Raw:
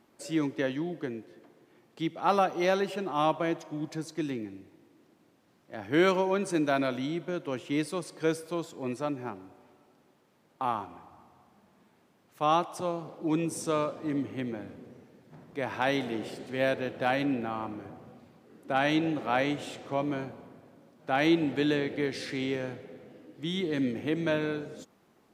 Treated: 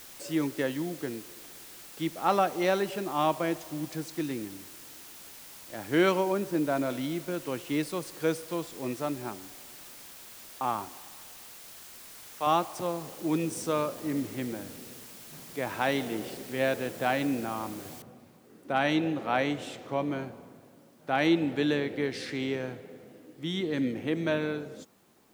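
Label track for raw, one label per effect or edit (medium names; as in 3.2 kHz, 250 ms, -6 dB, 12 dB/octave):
6.320000	6.900000	low-pass 1.1 kHz 6 dB/octave
10.890000	12.470000	high-pass 510 Hz 6 dB/octave
18.020000	18.020000	noise floor step -48 dB -69 dB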